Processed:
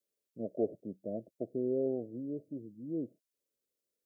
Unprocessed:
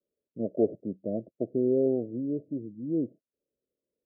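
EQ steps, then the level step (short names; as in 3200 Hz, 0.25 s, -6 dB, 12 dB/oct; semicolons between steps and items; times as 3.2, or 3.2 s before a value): tone controls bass +3 dB, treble +6 dB; tilt shelf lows -6.5 dB, about 650 Hz; -5.0 dB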